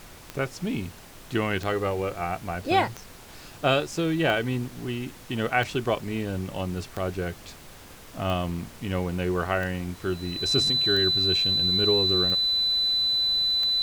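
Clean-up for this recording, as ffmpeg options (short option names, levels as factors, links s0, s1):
-af "adeclick=t=4,bandreject=f=4000:w=30,afftdn=nr=26:nf=-46"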